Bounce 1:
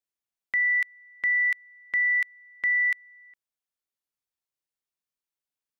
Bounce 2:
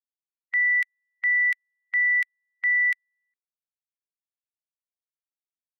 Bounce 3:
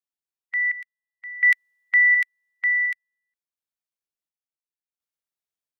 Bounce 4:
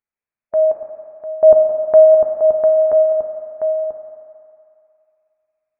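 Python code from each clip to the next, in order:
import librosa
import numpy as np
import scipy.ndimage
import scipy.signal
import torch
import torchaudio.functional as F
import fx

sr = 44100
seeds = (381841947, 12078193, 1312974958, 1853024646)

y1 = fx.bin_expand(x, sr, power=2.0)
y1 = scipy.signal.sosfilt(scipy.signal.butter(2, 1100.0, 'highpass', fs=sr, output='sos'), y1)
y1 = y1 * librosa.db_to_amplitude(2.5)
y2 = fx.rider(y1, sr, range_db=10, speed_s=0.5)
y2 = fx.tremolo_random(y2, sr, seeds[0], hz=1.4, depth_pct=90)
y2 = y2 * librosa.db_to_amplitude(6.0)
y3 = y2 + 10.0 ** (-6.0 / 20.0) * np.pad(y2, (int(979 * sr / 1000.0), 0))[:len(y2)]
y3 = fx.rev_fdn(y3, sr, rt60_s=3.0, lf_ratio=1.0, hf_ratio=0.5, size_ms=30.0, drr_db=2.5)
y3 = fx.freq_invert(y3, sr, carrier_hz=2600)
y3 = y3 * librosa.db_to_amplitude(5.5)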